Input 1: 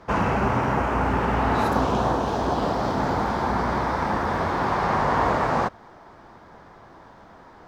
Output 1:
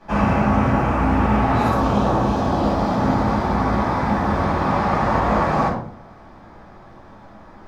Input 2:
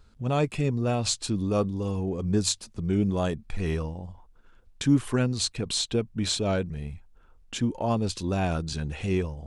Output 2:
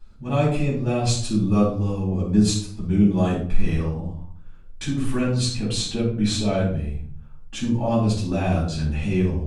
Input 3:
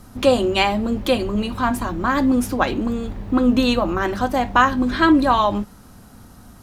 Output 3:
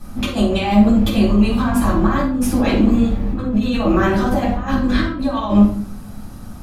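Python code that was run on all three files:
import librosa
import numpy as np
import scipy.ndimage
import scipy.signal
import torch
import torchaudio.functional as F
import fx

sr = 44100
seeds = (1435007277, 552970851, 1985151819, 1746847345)

y = fx.over_compress(x, sr, threshold_db=-21.0, ratio=-0.5)
y = fx.room_shoebox(y, sr, seeds[0], volume_m3=560.0, walls='furnished', distance_m=8.5)
y = y * librosa.db_to_amplitude(-8.5)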